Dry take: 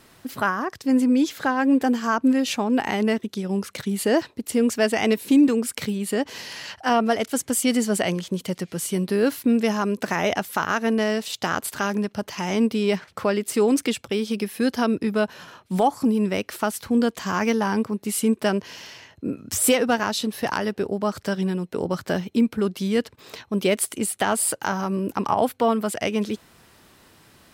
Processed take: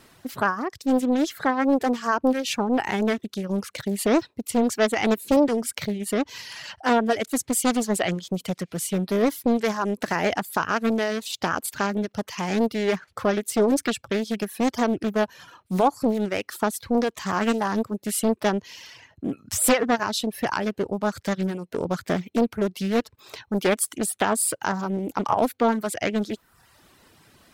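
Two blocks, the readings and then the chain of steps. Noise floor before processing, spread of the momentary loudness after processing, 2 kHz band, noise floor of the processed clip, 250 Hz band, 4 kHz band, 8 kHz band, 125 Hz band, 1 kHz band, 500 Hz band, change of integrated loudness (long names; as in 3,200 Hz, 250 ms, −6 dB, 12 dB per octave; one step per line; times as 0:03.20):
−55 dBFS, 8 LU, −1.0 dB, −63 dBFS, −2.5 dB, −2.0 dB, −0.5 dB, −1.5 dB, 0.0 dB, −0.5 dB, −1.5 dB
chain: reverb reduction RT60 0.79 s
highs frequency-modulated by the lows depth 0.74 ms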